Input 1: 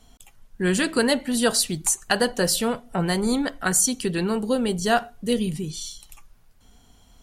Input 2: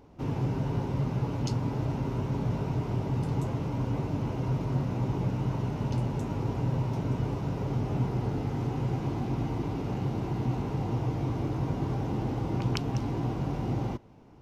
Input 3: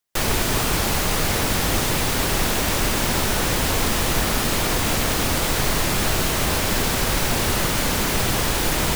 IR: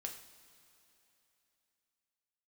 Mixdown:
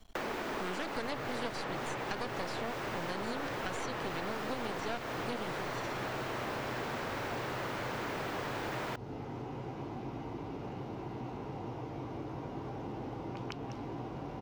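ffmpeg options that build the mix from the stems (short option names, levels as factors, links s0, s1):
-filter_complex "[0:a]aeval=exprs='max(val(0),0)':c=same,volume=1[s0];[1:a]adelay=750,volume=0.596[s1];[2:a]acrossover=split=230 2300:gain=0.0794 1 0.224[s2][s3][s4];[s2][s3][s4]amix=inputs=3:normalize=0,volume=0.891[s5];[s0][s1][s5]amix=inputs=3:normalize=0,acrossover=split=7200[s6][s7];[s7]acompressor=threshold=0.00501:ratio=4:attack=1:release=60[s8];[s6][s8]amix=inputs=2:normalize=0,equalizer=f=10000:w=0.55:g=-9.5,acrossover=split=290|3900[s9][s10][s11];[s9]acompressor=threshold=0.00501:ratio=4[s12];[s10]acompressor=threshold=0.0126:ratio=4[s13];[s11]acompressor=threshold=0.00282:ratio=4[s14];[s12][s13][s14]amix=inputs=3:normalize=0"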